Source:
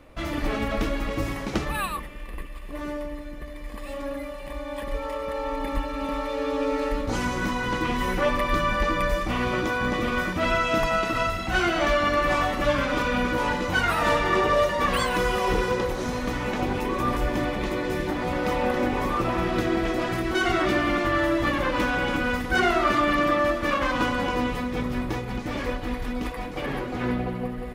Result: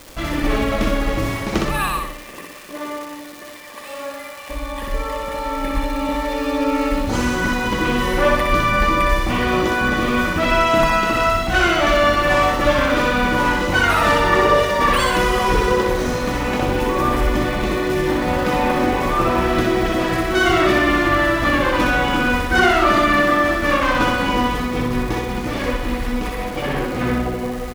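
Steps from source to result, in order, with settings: 2.11–4.48 s: high-pass 200 Hz -> 660 Hz 12 dB/octave; crackle 560 per s -35 dBFS; feedback delay 62 ms, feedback 45%, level -3.5 dB; trim +5.5 dB

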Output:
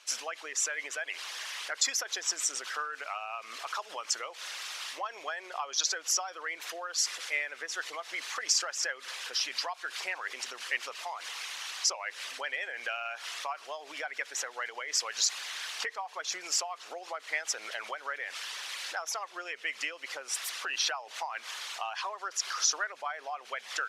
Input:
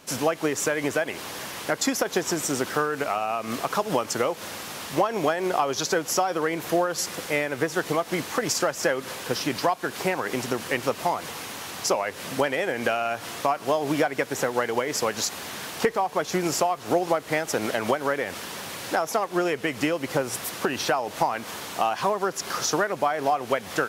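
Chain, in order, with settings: resonances exaggerated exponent 1.5; Bessel high-pass 2.8 kHz, order 2; distance through air 59 m; trim +4.5 dB

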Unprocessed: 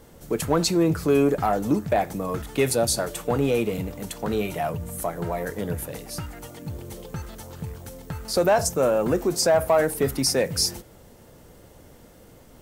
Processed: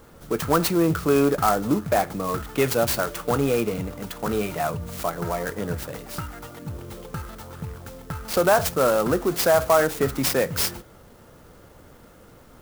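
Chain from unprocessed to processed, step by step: peaking EQ 1.3 kHz +8.5 dB 0.61 oct; sampling jitter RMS 0.04 ms

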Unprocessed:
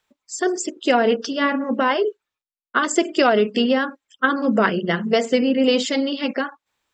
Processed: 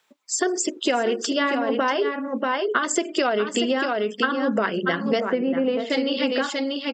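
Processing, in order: Bessel high-pass 240 Hz, order 2; delay 636 ms -8.5 dB; compression, threshold -26 dBFS, peak gain reduction 13 dB; 5.20–5.90 s: low-pass 1.7 kHz 12 dB/octave; trim +6.5 dB

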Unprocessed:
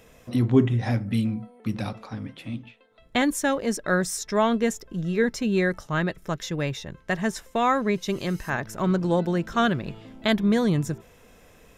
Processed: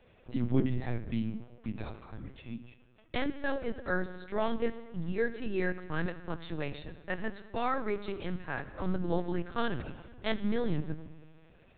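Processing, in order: dynamic bell 1.1 kHz, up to -3 dB, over -42 dBFS, Q 4.4; on a send at -9.5 dB: reverberation RT60 1.6 s, pre-delay 3 ms; on the sum: LPC vocoder at 8 kHz pitch kept; trim -8.5 dB

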